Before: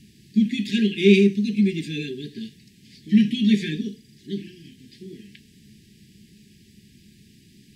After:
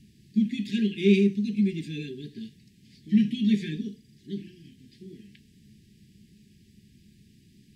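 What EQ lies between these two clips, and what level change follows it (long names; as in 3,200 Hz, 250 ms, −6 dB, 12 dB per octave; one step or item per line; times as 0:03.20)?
low-shelf EQ 250 Hz +7 dB
−8.5 dB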